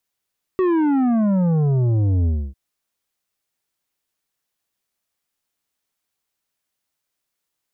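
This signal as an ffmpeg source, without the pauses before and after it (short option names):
-f lavfi -i "aevalsrc='0.158*clip((1.95-t)/0.28,0,1)*tanh(2.82*sin(2*PI*380*1.95/log(65/380)*(exp(log(65/380)*t/1.95)-1)))/tanh(2.82)':d=1.95:s=44100"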